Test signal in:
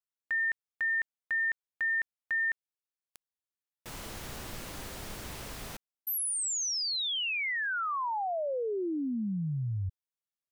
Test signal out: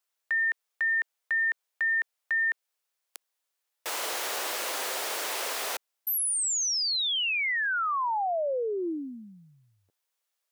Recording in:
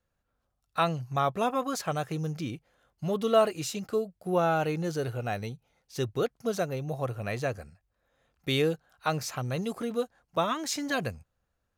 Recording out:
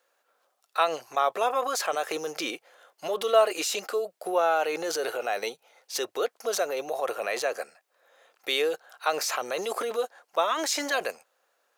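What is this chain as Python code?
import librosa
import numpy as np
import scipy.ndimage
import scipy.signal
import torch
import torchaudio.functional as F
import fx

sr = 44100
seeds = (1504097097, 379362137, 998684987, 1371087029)

p1 = scipy.signal.sosfilt(scipy.signal.butter(4, 440.0, 'highpass', fs=sr, output='sos'), x)
p2 = fx.over_compress(p1, sr, threshold_db=-42.0, ratio=-1.0)
p3 = p1 + (p2 * 10.0 ** (-1.0 / 20.0))
y = p3 * 10.0 ** (2.5 / 20.0)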